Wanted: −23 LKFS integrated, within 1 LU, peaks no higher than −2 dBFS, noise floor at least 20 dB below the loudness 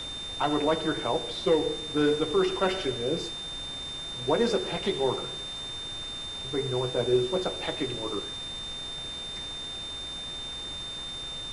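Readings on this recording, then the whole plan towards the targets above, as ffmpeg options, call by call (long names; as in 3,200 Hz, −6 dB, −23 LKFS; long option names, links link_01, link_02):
interfering tone 3,600 Hz; level of the tone −35 dBFS; background noise floor −37 dBFS; target noise floor −50 dBFS; integrated loudness −29.5 LKFS; sample peak −13.0 dBFS; target loudness −23.0 LKFS
→ -af "bandreject=frequency=3600:width=30"
-af "afftdn=noise_reduction=13:noise_floor=-37"
-af "volume=6.5dB"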